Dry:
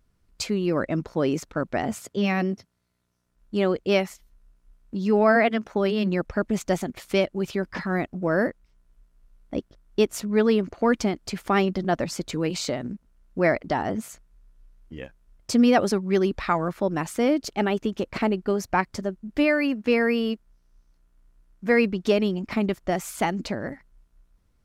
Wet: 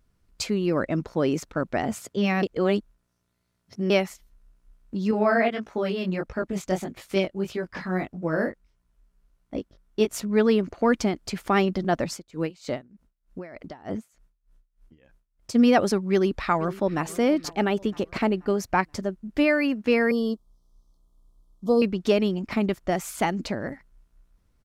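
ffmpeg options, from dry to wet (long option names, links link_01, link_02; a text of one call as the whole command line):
ffmpeg -i in.wav -filter_complex "[0:a]asettb=1/sr,asplit=3[link_01][link_02][link_03];[link_01]atrim=end=5.114[link_04];[link_02]atrim=start=5.11:end=10.11,asetpts=PTS-STARTPTS,afade=type=in:duration=0.004:curve=qsin,afade=type=out:start_time=4.996:duration=0.004:curve=qsin,flanger=delay=17.5:depth=4.5:speed=1.6[link_05];[link_03]atrim=start=10.106[link_06];[link_04][link_05]acrossfade=duration=0.004:curve1=hsin:curve2=qsin[link_07];[link_07][link_06]acrossfade=duration=0.004:curve1=qsin:curve2=hsin,asplit=3[link_08][link_09][link_10];[link_08]afade=type=out:start_time=12.07:duration=0.02[link_11];[link_09]aeval=exprs='val(0)*pow(10,-25*(0.5-0.5*cos(2*PI*3.3*n/s))/20)':channel_layout=same,afade=type=in:start_time=12.07:duration=0.02,afade=type=out:start_time=15.54:duration=0.02[link_12];[link_10]afade=type=in:start_time=15.54:duration=0.02[link_13];[link_11][link_12][link_13]amix=inputs=3:normalize=0,asplit=2[link_14][link_15];[link_15]afade=type=in:start_time=16.12:duration=0.01,afade=type=out:start_time=17.04:duration=0.01,aecho=0:1:480|960|1440|1920:0.133352|0.0600085|0.0270038|0.0121517[link_16];[link_14][link_16]amix=inputs=2:normalize=0,asettb=1/sr,asplit=3[link_17][link_18][link_19];[link_17]atrim=end=20.114[link_20];[link_18]atrim=start=20.11:end=21.82,asetpts=PTS-STARTPTS,afade=type=in:duration=0.004:curve=qsin,afade=type=out:start_time=1.706:duration=0.004:curve=qsin,asuperstop=centerf=2000:order=20:qfactor=1.1[link_21];[link_19]atrim=start=21.816[link_22];[link_20][link_21]acrossfade=duration=0.004:curve1=hsin:curve2=qsin[link_23];[link_23][link_22]acrossfade=duration=0.004:curve1=qsin:curve2=hsin,asplit=3[link_24][link_25][link_26];[link_24]atrim=end=2.432[link_27];[link_25]atrim=start=2.428:end=3.902,asetpts=PTS-STARTPTS,areverse[link_28];[link_26]atrim=start=3.898[link_29];[link_27][link_28]acrossfade=duration=0.004:curve1=hsin:curve2=hsin[link_30];[link_30][link_29]acrossfade=duration=0.004:curve1=hsin:curve2=hsin" out.wav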